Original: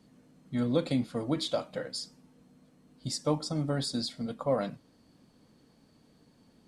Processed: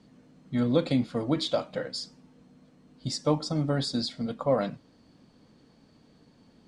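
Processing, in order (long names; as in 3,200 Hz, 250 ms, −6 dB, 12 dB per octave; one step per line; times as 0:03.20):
low-pass filter 6,500 Hz 12 dB per octave
level +3.5 dB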